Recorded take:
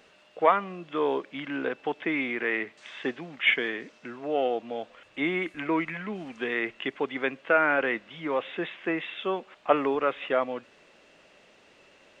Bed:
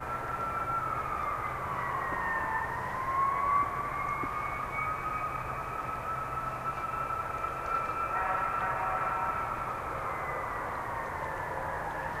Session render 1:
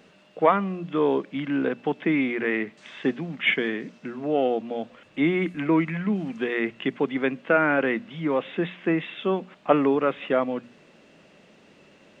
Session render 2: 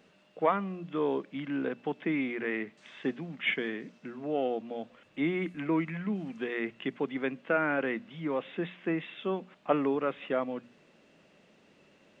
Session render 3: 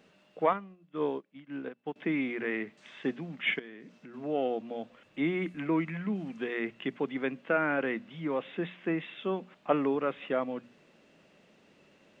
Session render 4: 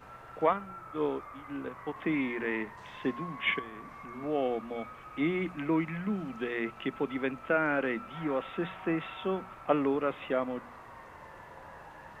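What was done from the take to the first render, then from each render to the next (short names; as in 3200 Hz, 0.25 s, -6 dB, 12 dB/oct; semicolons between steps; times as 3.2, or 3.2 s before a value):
bell 180 Hz +13.5 dB 1.7 oct; notches 60/120/180/240 Hz
gain -7.5 dB
0.53–1.96 upward expander 2.5:1, over -41 dBFS; 3.59–4.14 compressor 3:1, threshold -47 dBFS
add bed -14 dB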